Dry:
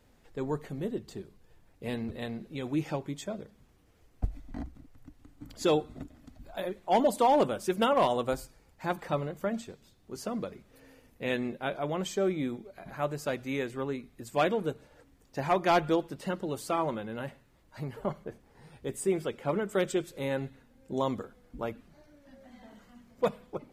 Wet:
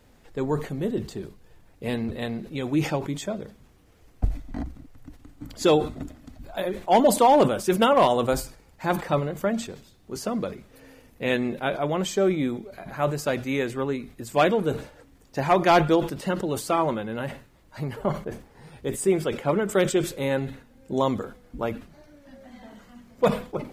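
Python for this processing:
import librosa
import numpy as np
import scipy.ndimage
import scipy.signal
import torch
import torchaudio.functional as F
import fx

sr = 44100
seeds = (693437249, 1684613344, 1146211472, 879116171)

y = fx.sustainer(x, sr, db_per_s=130.0)
y = y * librosa.db_to_amplitude(6.5)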